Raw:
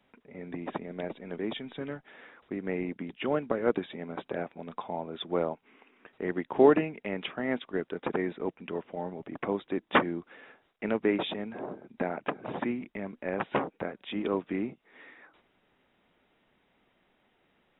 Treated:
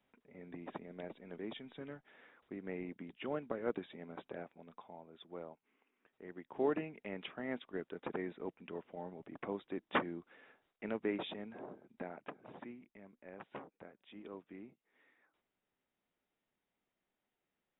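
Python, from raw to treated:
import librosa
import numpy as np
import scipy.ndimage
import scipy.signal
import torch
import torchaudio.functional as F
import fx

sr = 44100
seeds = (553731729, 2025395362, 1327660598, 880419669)

y = fx.gain(x, sr, db=fx.line((4.23, -10.5), (5.02, -18.5), (6.3, -18.5), (6.94, -10.0), (11.57, -10.0), (12.86, -19.5)))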